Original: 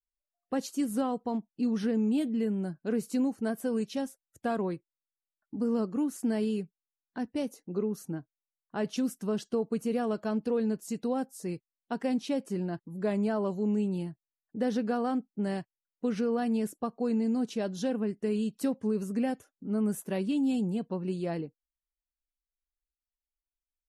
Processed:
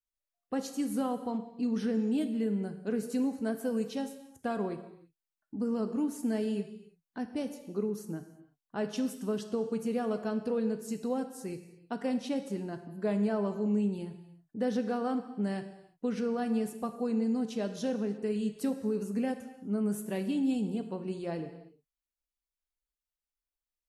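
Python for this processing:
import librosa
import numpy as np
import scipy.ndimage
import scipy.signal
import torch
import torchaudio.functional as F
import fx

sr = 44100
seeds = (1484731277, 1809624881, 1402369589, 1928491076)

y = fx.rev_gated(x, sr, seeds[0], gate_ms=370, shape='falling', drr_db=7.5)
y = F.gain(torch.from_numpy(y), -2.5).numpy()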